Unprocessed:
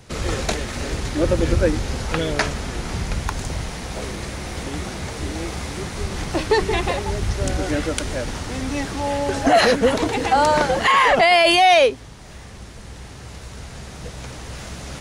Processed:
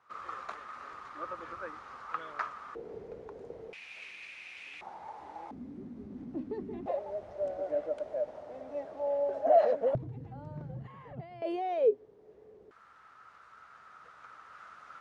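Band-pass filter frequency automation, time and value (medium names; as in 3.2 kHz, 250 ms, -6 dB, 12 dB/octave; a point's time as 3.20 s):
band-pass filter, Q 9.3
1.2 kHz
from 2.75 s 450 Hz
from 3.73 s 2.5 kHz
from 4.81 s 860 Hz
from 5.51 s 250 Hz
from 6.86 s 610 Hz
from 9.95 s 130 Hz
from 11.42 s 430 Hz
from 12.71 s 1.3 kHz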